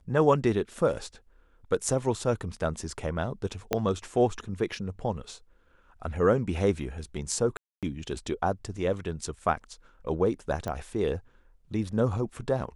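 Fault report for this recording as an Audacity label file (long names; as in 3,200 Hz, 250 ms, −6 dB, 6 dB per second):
3.730000	3.730000	click −11 dBFS
7.570000	7.830000	drop-out 257 ms
10.680000	10.680000	click −20 dBFS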